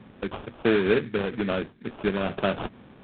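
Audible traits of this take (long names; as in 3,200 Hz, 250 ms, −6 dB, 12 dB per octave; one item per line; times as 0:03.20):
phaser sweep stages 12, 2.2 Hz, lowest notch 740–2,500 Hz
aliases and images of a low sample rate 2,000 Hz, jitter 20%
A-law companding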